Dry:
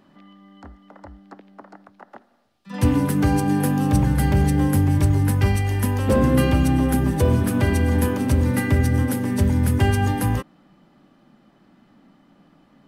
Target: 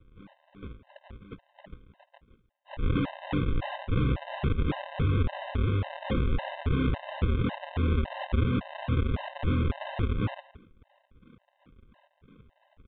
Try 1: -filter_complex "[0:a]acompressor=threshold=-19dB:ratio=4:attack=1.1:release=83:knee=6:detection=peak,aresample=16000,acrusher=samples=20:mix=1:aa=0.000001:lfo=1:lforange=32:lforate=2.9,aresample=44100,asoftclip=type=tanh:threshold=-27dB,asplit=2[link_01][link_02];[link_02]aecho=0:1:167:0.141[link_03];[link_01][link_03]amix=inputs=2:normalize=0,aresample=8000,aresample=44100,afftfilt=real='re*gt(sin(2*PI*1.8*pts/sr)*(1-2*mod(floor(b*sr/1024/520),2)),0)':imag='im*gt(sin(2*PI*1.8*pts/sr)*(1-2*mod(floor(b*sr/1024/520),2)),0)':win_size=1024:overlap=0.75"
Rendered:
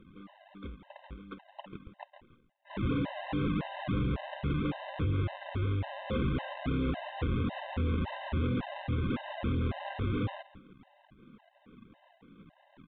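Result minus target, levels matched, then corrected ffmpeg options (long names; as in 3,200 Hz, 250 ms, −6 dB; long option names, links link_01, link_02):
sample-and-hold swept by an LFO: distortion −10 dB; soft clipping: distortion +9 dB
-filter_complex "[0:a]acompressor=threshold=-19dB:ratio=4:attack=1.1:release=83:knee=6:detection=peak,aresample=16000,acrusher=samples=59:mix=1:aa=0.000001:lfo=1:lforange=94.4:lforate=2.9,aresample=44100,asoftclip=type=tanh:threshold=-18.5dB,asplit=2[link_01][link_02];[link_02]aecho=0:1:167:0.141[link_03];[link_01][link_03]amix=inputs=2:normalize=0,aresample=8000,aresample=44100,afftfilt=real='re*gt(sin(2*PI*1.8*pts/sr)*(1-2*mod(floor(b*sr/1024/520),2)),0)':imag='im*gt(sin(2*PI*1.8*pts/sr)*(1-2*mod(floor(b*sr/1024/520),2)),0)':win_size=1024:overlap=0.75"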